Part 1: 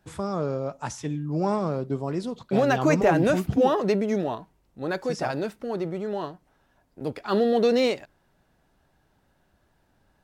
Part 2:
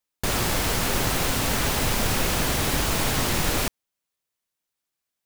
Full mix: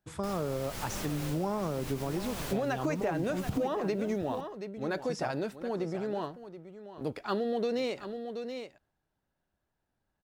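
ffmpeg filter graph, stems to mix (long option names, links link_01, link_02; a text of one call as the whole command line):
ffmpeg -i stem1.wav -i stem2.wav -filter_complex "[0:a]agate=range=-13dB:threshold=-53dB:ratio=16:detection=peak,volume=-3.5dB,asplit=3[link_01][link_02][link_03];[link_02]volume=-14dB[link_04];[1:a]volume=-14dB,asplit=2[link_05][link_06];[link_06]volume=-20.5dB[link_07];[link_03]apad=whole_len=231810[link_08];[link_05][link_08]sidechaincompress=threshold=-34dB:ratio=5:attack=16:release=184[link_09];[link_04][link_07]amix=inputs=2:normalize=0,aecho=0:1:727:1[link_10];[link_01][link_09][link_10]amix=inputs=3:normalize=0,acompressor=threshold=-27dB:ratio=10" out.wav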